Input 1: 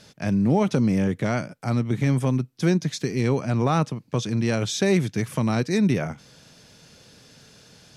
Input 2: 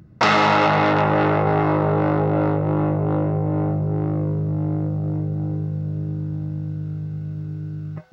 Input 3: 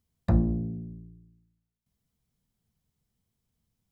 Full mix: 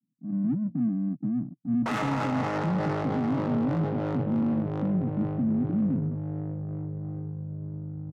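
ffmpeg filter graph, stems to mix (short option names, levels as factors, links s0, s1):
-filter_complex "[0:a]equalizer=f=250:t=o:w=0.7:g=9,afwtdn=0.0631,volume=0.668,afade=t=in:st=0.97:d=0.59:silence=0.421697[s0];[1:a]adelay=1650,volume=0.316[s1];[2:a]aeval=exprs='val(0)*pow(10,-30*if(lt(mod(4.7*n/s,1),2*abs(4.7)/1000),1-mod(4.7*n/s,1)/(2*abs(4.7)/1000),(mod(4.7*n/s,1)-2*abs(4.7)/1000)/(1-2*abs(4.7)/1000))/20)':c=same,volume=0.668[s2];[s0][s2]amix=inputs=2:normalize=0,asuperpass=centerf=200:order=20:qfactor=1,alimiter=limit=0.141:level=0:latency=1:release=312,volume=1[s3];[s1][s3]amix=inputs=2:normalize=0,adynamicsmooth=sensitivity=3:basefreq=530,alimiter=limit=0.1:level=0:latency=1:release=15"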